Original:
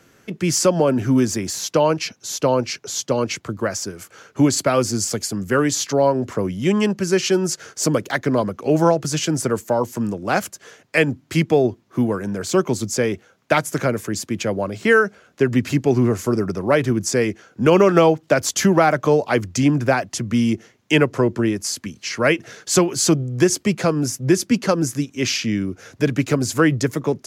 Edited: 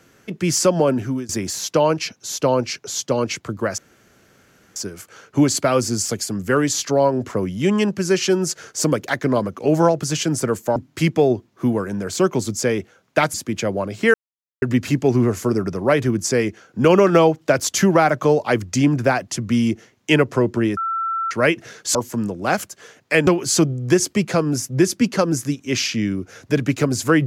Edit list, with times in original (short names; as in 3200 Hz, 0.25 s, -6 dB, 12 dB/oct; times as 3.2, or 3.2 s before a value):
0.89–1.29 fade out, to -22 dB
3.78 insert room tone 0.98 s
9.78–11.1 move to 22.77
13.68–14.16 cut
14.96–15.44 mute
21.59–22.13 bleep 1340 Hz -20 dBFS